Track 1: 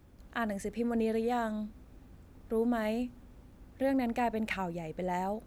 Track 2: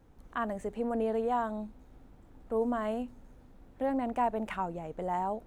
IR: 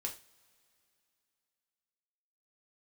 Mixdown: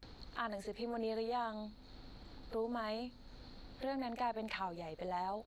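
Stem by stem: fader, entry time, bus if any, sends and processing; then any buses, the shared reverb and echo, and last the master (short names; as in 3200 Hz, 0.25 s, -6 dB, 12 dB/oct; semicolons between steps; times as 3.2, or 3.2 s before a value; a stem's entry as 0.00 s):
-11.0 dB, 0.00 s, no send, HPF 520 Hz; compressor, threshold -36 dBFS, peak gain reduction 8.5 dB; hum 50 Hz, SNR 13 dB
-4.5 dB, 28 ms, polarity flipped, no send, tilt shelf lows -3 dB; upward compressor, threshold -39 dBFS; synth low-pass 4300 Hz, resonance Q 14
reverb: off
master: compressor 1.5:1, threshold -40 dBFS, peak gain reduction 4.5 dB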